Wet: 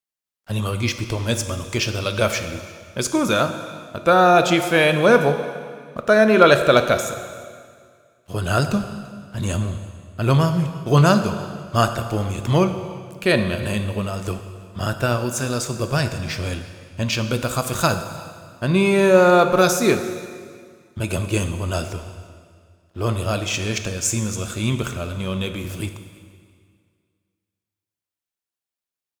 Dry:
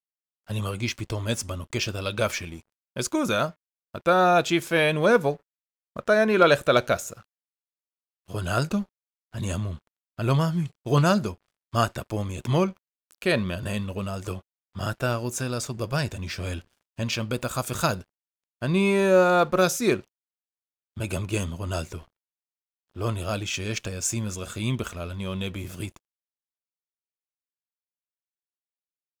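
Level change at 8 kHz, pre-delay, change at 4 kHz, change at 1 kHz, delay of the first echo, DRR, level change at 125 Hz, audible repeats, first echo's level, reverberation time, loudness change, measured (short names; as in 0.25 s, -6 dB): +5.5 dB, 7 ms, +5.5 dB, +5.5 dB, 0.339 s, 8.0 dB, +6.0 dB, 1, -23.5 dB, 2.0 s, +5.5 dB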